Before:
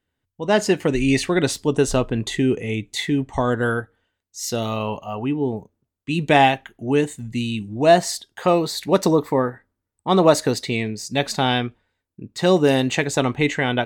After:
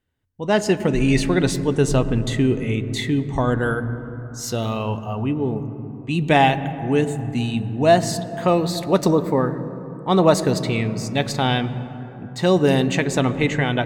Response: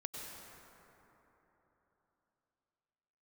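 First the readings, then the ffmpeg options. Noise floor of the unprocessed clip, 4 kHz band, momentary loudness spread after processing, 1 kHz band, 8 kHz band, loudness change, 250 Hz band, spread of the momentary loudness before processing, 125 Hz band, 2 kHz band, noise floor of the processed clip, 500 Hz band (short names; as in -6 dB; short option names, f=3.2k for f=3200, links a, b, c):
-81 dBFS, -1.5 dB, 12 LU, -0.5 dB, -2.0 dB, 0.0 dB, +1.0 dB, 11 LU, +4.0 dB, -1.0 dB, -35 dBFS, -0.5 dB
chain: -filter_complex "[0:a]asplit=2[a][b];[b]bass=f=250:g=14,treble=f=4k:g=-11[c];[1:a]atrim=start_sample=2205[d];[c][d]afir=irnorm=-1:irlink=0,volume=-8.5dB[e];[a][e]amix=inputs=2:normalize=0,volume=-2.5dB"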